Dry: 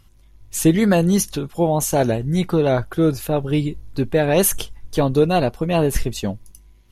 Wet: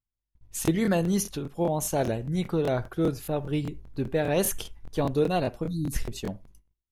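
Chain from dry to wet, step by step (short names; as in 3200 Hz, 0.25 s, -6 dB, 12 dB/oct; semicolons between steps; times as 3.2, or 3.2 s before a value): spectral delete 5.66–5.93, 340–3600 Hz; gate -43 dBFS, range -30 dB; on a send at -19.5 dB: resonant high shelf 3300 Hz -11.5 dB, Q 1.5 + reverb, pre-delay 48 ms; on the sum: crackling interface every 0.20 s, samples 1024, repeat, from 0.63; mismatched tape noise reduction decoder only; gain -8.5 dB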